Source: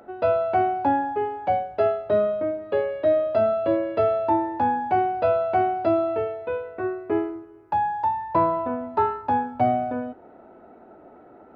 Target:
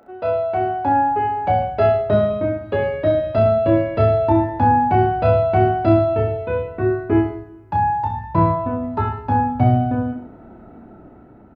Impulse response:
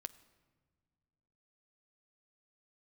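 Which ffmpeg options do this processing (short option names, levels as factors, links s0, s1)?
-af "asubboost=boost=6.5:cutoff=190,aecho=1:1:30|64.5|104.2|149.8|202.3:0.631|0.398|0.251|0.158|0.1,dynaudnorm=f=160:g=13:m=3.76,volume=0.75"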